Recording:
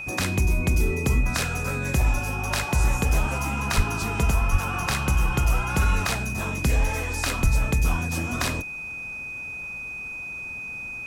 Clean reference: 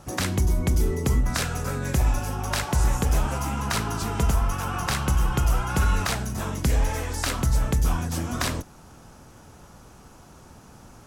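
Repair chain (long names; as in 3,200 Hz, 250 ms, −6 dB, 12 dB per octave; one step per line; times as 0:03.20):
notch filter 2,500 Hz, Q 30
0:03.76–0:03.88: high-pass filter 140 Hz 24 dB per octave
0:04.51–0:04.63: high-pass filter 140 Hz 24 dB per octave
0:07.42–0:07.54: high-pass filter 140 Hz 24 dB per octave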